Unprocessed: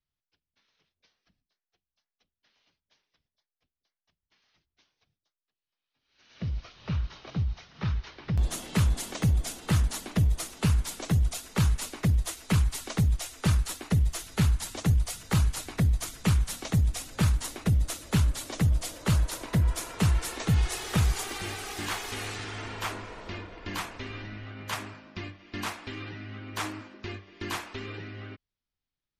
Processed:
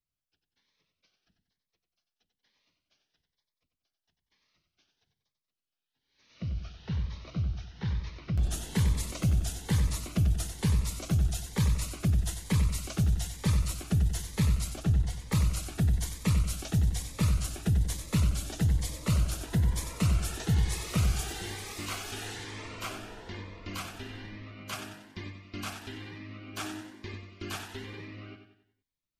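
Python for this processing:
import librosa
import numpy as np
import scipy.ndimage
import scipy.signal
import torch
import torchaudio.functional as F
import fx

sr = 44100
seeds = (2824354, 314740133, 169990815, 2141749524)

y = fx.lowpass(x, sr, hz=2800.0, slope=6, at=(14.7, 15.32))
y = fx.echo_feedback(y, sr, ms=93, feedback_pct=44, wet_db=-8)
y = fx.notch_cascade(y, sr, direction='rising', hz=1.1)
y = y * librosa.db_to_amplitude(-2.5)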